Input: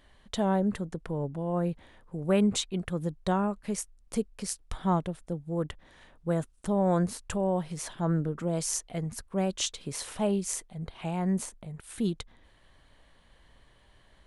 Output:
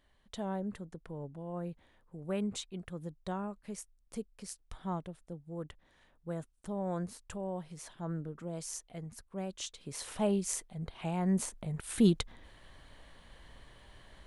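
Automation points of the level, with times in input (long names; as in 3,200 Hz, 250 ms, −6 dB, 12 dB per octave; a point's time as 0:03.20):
0:09.71 −10.5 dB
0:10.14 −2.5 dB
0:11.25 −2.5 dB
0:11.76 +4.5 dB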